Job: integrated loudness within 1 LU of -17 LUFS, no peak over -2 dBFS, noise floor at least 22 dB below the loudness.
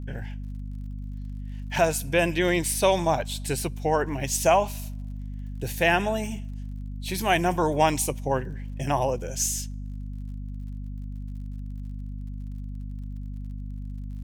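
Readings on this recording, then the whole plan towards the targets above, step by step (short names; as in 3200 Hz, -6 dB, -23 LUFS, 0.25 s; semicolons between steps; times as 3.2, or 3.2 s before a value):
ticks 38/s; hum 50 Hz; harmonics up to 250 Hz; hum level -32 dBFS; loudness -25.5 LUFS; peak -8.0 dBFS; loudness target -17.0 LUFS
-> de-click; notches 50/100/150/200/250 Hz; gain +8.5 dB; limiter -2 dBFS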